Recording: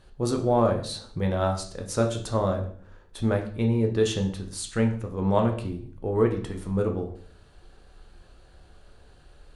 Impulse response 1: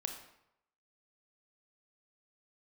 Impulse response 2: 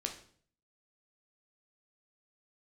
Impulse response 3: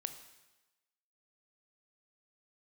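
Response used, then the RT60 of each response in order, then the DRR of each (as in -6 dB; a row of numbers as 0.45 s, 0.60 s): 2; 0.80 s, 0.55 s, 1.1 s; 4.0 dB, 2.5 dB, 8.5 dB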